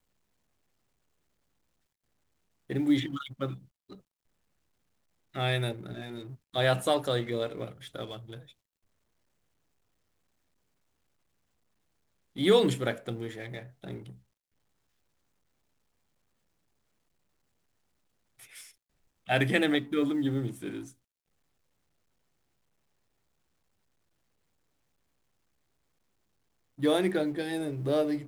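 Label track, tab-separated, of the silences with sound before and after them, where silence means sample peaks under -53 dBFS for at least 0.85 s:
3.990000	5.340000	silence
8.520000	12.360000	silence
14.190000	18.390000	silence
20.930000	26.780000	silence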